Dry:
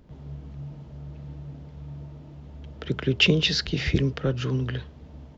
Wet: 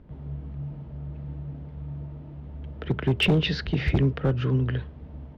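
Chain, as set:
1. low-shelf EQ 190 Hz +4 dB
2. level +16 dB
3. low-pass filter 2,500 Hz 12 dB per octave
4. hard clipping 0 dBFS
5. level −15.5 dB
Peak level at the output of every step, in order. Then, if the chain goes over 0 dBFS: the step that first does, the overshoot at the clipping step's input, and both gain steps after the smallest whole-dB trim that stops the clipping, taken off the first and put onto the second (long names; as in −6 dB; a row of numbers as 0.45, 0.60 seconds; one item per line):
−6.0, +10.0, +9.5, 0.0, −15.5 dBFS
step 2, 9.5 dB
step 2 +6 dB, step 5 −5.5 dB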